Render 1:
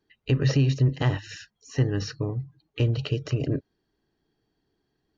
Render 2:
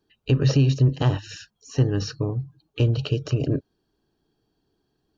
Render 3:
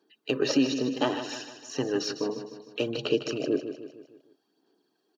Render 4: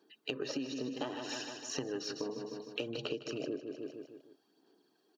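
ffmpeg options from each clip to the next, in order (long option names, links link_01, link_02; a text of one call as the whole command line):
ffmpeg -i in.wav -af "equalizer=frequency=2000:width=5.1:gain=-13.5,volume=3dB" out.wav
ffmpeg -i in.wav -filter_complex "[0:a]highpass=frequency=250:width=0.5412,highpass=frequency=250:width=1.3066,aphaser=in_gain=1:out_gain=1:delay=4.5:decay=0.43:speed=0.64:type=sinusoidal,asplit=2[link_01][link_02];[link_02]aecho=0:1:153|306|459|612|765:0.316|0.155|0.0759|0.0372|0.0182[link_03];[link_01][link_03]amix=inputs=2:normalize=0" out.wav
ffmpeg -i in.wav -af "acompressor=threshold=-36dB:ratio=8,volume=1dB" out.wav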